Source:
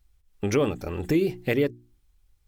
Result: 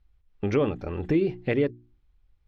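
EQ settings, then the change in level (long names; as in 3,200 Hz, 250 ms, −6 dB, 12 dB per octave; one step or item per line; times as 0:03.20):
high-frequency loss of the air 250 metres
0.0 dB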